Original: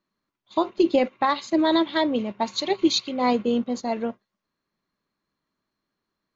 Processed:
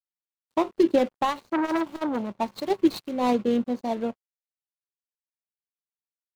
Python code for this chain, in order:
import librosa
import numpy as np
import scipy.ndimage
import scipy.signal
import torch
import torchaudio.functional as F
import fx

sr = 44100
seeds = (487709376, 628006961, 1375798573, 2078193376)

y = scipy.ndimage.median_filter(x, 25, mode='constant')
y = np.sign(y) * np.maximum(np.abs(y) - 10.0 ** (-53.5 / 20.0), 0.0)
y = fx.transformer_sat(y, sr, knee_hz=1100.0, at=(1.3, 2.32))